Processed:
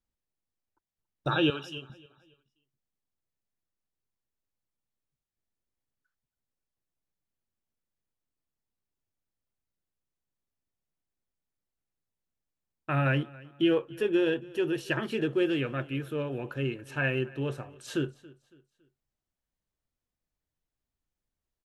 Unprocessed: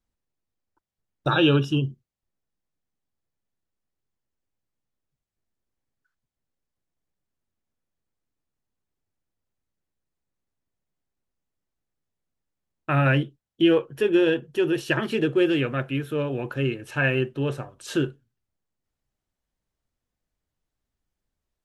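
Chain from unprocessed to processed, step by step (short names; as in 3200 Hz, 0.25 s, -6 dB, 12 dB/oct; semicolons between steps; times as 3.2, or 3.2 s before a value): 1.5–1.9 HPF 1300 Hz 6 dB/oct; on a send: feedback echo 0.279 s, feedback 38%, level -22 dB; on the sum: gain -6 dB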